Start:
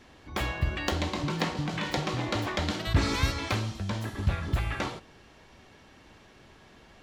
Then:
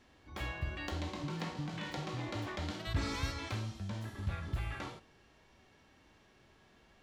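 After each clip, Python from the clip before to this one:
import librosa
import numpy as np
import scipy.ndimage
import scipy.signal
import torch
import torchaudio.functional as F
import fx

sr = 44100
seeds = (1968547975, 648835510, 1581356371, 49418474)

y = fx.hpss(x, sr, part='percussive', gain_db=-8)
y = y * 10.0 ** (-7.0 / 20.0)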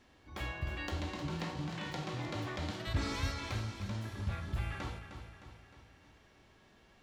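y = fx.echo_feedback(x, sr, ms=308, feedback_pct=52, wet_db=-9.5)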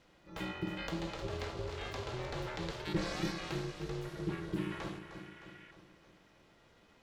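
y = fx.spec_repair(x, sr, seeds[0], start_s=5.09, length_s=0.59, low_hz=1600.0, high_hz=3500.0, source='before')
y = y * np.sin(2.0 * np.pi * 250.0 * np.arange(len(y)) / sr)
y = y * 10.0 ** (2.0 / 20.0)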